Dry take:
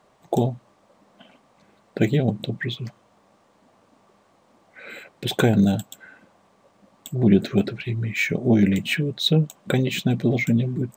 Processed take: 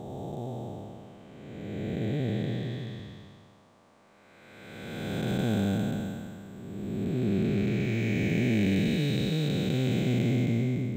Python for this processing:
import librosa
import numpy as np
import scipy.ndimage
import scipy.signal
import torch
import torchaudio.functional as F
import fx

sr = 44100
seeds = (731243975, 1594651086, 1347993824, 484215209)

y = fx.spec_blur(x, sr, span_ms=836.0)